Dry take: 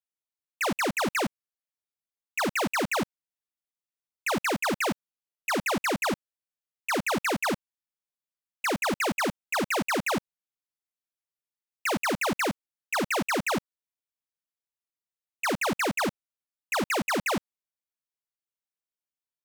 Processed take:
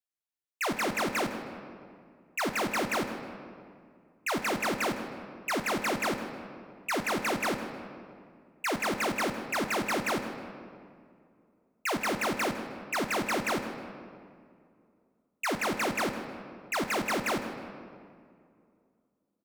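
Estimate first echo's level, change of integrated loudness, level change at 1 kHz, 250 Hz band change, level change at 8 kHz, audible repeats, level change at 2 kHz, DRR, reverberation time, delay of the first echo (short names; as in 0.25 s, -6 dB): -17.0 dB, -3.0 dB, -2.0 dB, -2.5 dB, -3.0 dB, 1, -2.5 dB, 5.0 dB, 2.4 s, 0.157 s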